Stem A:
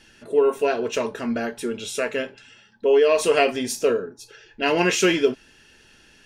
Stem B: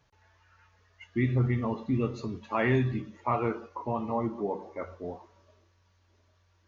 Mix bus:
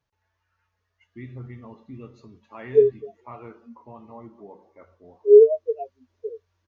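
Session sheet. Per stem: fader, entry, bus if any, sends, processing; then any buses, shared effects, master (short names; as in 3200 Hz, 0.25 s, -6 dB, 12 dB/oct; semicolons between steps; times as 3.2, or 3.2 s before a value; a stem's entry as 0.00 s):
+2.5 dB, 2.40 s, no send, spectral expander 4:1
5.04 s -12.5 dB -> 5.82 s -5.5 dB, 0.00 s, no send, dry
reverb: off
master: dry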